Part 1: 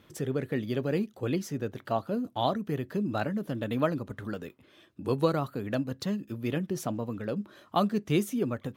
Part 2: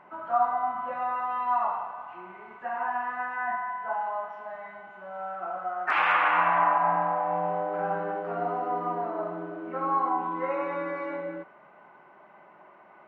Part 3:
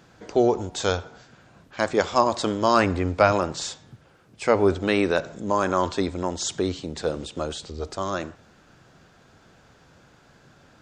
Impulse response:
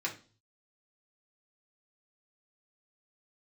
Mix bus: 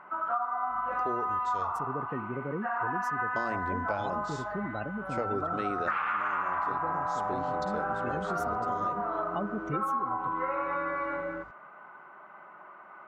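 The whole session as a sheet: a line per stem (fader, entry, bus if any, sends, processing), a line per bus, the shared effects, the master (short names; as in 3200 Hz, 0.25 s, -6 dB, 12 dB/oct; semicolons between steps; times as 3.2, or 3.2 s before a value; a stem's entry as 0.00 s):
-5.5 dB, 1.60 s, no send, spectral gate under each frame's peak -20 dB strong
-2.0 dB, 0.00 s, no send, bell 1300 Hz +13 dB 0.61 oct
-8.0 dB, 0.70 s, muted 1.85–3.36, no send, high shelf 2100 Hz -11 dB; hum 50 Hz, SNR 23 dB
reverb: off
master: compressor 12:1, threshold -27 dBFS, peak gain reduction 15.5 dB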